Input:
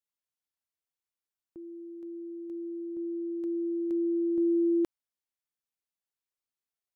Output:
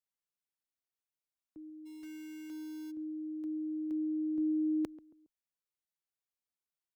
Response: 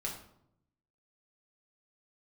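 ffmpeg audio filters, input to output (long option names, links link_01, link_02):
-filter_complex "[0:a]afreqshift=-29,asplit=3[link_01][link_02][link_03];[link_01]afade=type=out:start_time=1.85:duration=0.02[link_04];[link_02]acrusher=bits=3:mode=log:mix=0:aa=0.000001,afade=type=in:start_time=1.85:duration=0.02,afade=type=out:start_time=2.9:duration=0.02[link_05];[link_03]afade=type=in:start_time=2.9:duration=0.02[link_06];[link_04][link_05][link_06]amix=inputs=3:normalize=0,asplit=2[link_07][link_08];[link_08]adelay=137,lowpass=frequency=810:poles=1,volume=-17dB,asplit=2[link_09][link_10];[link_10]adelay=137,lowpass=frequency=810:poles=1,volume=0.4,asplit=2[link_11][link_12];[link_12]adelay=137,lowpass=frequency=810:poles=1,volume=0.4[link_13];[link_07][link_09][link_11][link_13]amix=inputs=4:normalize=0,volume=-5dB"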